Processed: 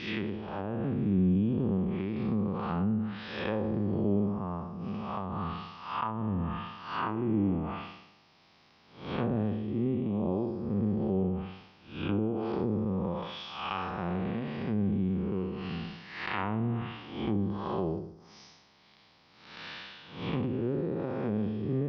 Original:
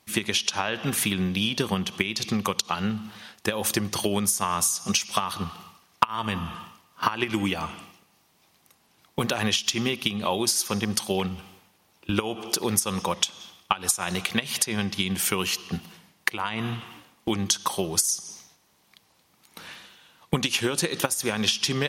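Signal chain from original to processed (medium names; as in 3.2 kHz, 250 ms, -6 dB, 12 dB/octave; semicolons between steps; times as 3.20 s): spectral blur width 254 ms; low-pass that closes with the level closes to 470 Hz, closed at -27.5 dBFS; elliptic low-pass 5.2 kHz, stop band 40 dB; trim +4.5 dB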